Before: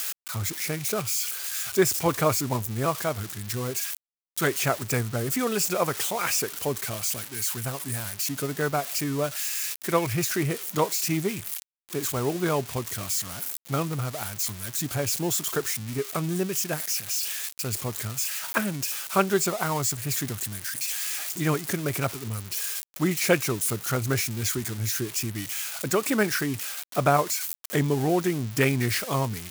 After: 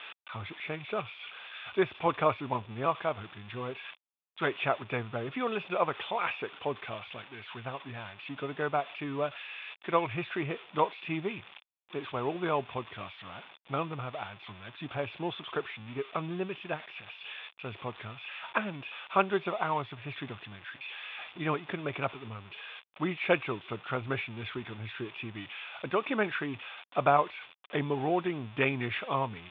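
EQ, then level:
Chebyshev low-pass with heavy ripple 3,600 Hz, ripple 6 dB
low-shelf EQ 170 Hz −8 dB
0.0 dB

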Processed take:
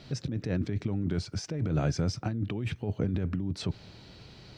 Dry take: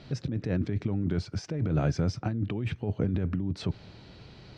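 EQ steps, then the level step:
high-shelf EQ 5,800 Hz +12 dB
−1.5 dB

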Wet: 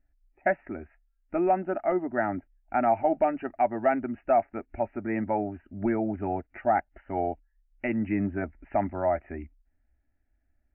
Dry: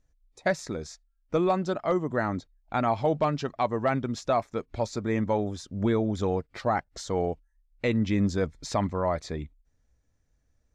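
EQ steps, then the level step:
dynamic equaliser 690 Hz, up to +5 dB, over −36 dBFS, Q 0.93
linear-phase brick-wall low-pass 3,000 Hz
phaser with its sweep stopped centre 720 Hz, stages 8
0.0 dB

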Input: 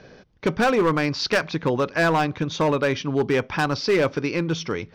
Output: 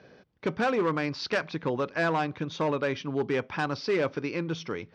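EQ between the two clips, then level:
high-pass filter 52 Hz
high-frequency loss of the air 84 metres
low-shelf EQ 87 Hz −7.5 dB
−6.0 dB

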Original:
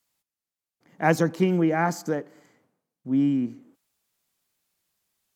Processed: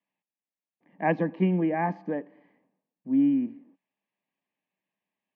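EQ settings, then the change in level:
Butterworth band-reject 1,400 Hz, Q 3.5
high-frequency loss of the air 71 metres
loudspeaker in its box 180–2,900 Hz, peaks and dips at 190 Hz +10 dB, 280 Hz +7 dB, 600 Hz +5 dB, 880 Hz +5 dB, 1,700 Hz +5 dB, 2,600 Hz +5 dB
−7.0 dB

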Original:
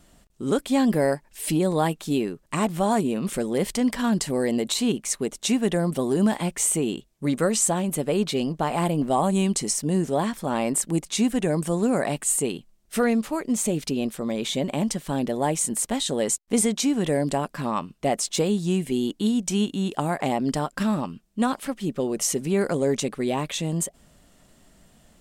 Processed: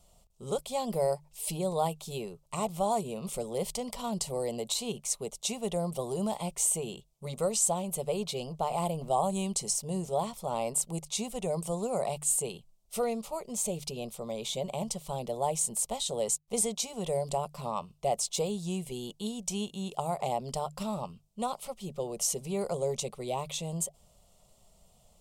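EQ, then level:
mains-hum notches 50/100/150 Hz
phaser with its sweep stopped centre 690 Hz, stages 4
−4.0 dB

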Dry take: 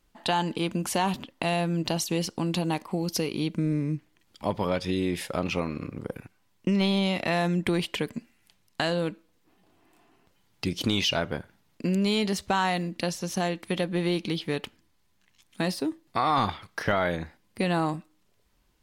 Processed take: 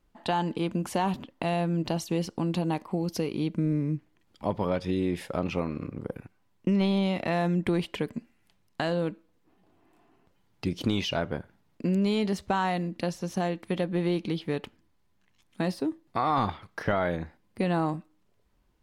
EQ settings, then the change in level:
high-shelf EQ 2,000 Hz −9.5 dB
0.0 dB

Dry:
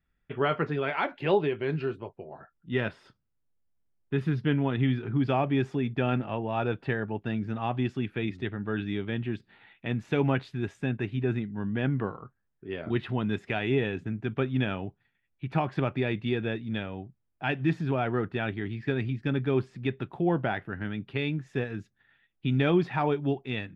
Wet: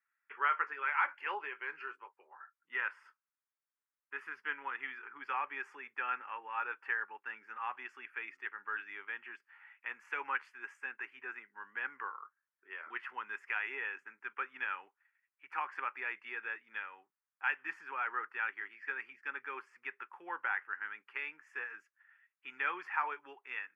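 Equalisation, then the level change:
high-pass filter 780 Hz 24 dB per octave
high-shelf EQ 2,600 Hz −10.5 dB
phaser with its sweep stopped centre 1,600 Hz, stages 4
+4.0 dB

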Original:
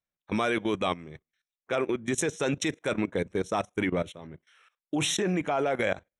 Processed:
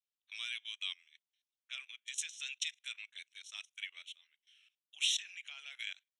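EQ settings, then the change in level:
four-pole ladder band-pass 3,300 Hz, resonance 55%
first difference
+11.5 dB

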